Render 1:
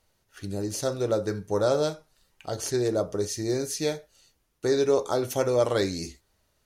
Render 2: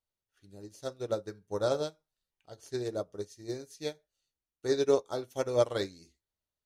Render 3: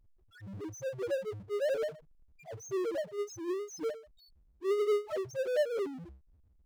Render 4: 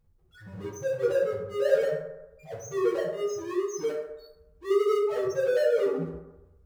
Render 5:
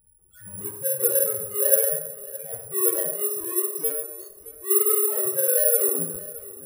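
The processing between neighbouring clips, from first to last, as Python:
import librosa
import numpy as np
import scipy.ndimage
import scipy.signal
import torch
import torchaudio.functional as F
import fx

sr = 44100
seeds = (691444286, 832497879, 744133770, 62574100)

y1 = fx.peak_eq(x, sr, hz=3500.0, db=3.5, octaves=0.44)
y1 = fx.upward_expand(y1, sr, threshold_db=-34.0, expansion=2.5)
y1 = y1 * librosa.db_to_amplitude(-1.0)
y2 = fx.spec_topn(y1, sr, count=1)
y2 = fx.power_curve(y2, sr, exponent=0.5)
y3 = fx.rev_fdn(y2, sr, rt60_s=0.98, lf_ratio=0.75, hf_ratio=0.4, size_ms=37.0, drr_db=-6.0)
y4 = fx.echo_feedback(y3, sr, ms=619, feedback_pct=44, wet_db=-18.0)
y4 = (np.kron(scipy.signal.resample_poly(y4, 1, 4), np.eye(4)[0]) * 4)[:len(y4)]
y4 = y4 * librosa.db_to_amplitude(-2.5)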